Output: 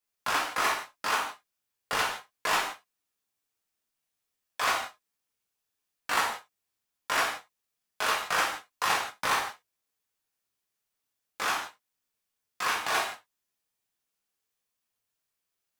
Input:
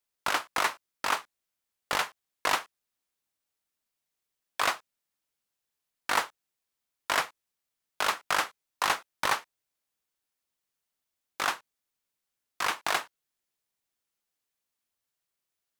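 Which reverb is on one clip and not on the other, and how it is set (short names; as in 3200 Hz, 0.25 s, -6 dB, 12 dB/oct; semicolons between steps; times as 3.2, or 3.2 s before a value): non-linear reverb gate 0.2 s falling, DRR -4.5 dB; gain -4.5 dB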